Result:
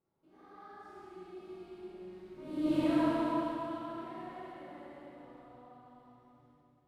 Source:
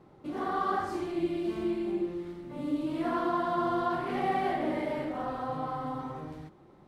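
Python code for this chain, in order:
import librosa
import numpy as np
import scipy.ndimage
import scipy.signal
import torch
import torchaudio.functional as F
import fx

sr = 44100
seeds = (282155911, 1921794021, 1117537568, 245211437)

y = fx.doppler_pass(x, sr, speed_mps=18, closest_m=1.7, pass_at_s=2.75)
y = fx.rev_schroeder(y, sr, rt60_s=2.8, comb_ms=33, drr_db=-6.5)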